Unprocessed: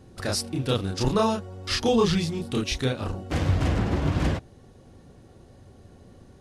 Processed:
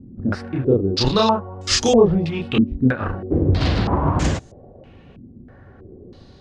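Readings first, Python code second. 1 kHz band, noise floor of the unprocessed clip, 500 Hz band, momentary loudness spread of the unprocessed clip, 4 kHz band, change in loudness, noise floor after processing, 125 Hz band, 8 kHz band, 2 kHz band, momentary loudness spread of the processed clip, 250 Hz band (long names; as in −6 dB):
+7.0 dB, −52 dBFS, +7.5 dB, 7 LU, +6.0 dB, +6.5 dB, −46 dBFS, +5.0 dB, +6.0 dB, +4.5 dB, 9 LU, +7.0 dB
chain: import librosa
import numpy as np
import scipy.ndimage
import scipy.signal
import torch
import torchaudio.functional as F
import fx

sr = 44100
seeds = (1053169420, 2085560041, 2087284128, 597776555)

y = fx.filter_held_lowpass(x, sr, hz=3.1, low_hz=240.0, high_hz=7000.0)
y = y * librosa.db_to_amplitude(4.5)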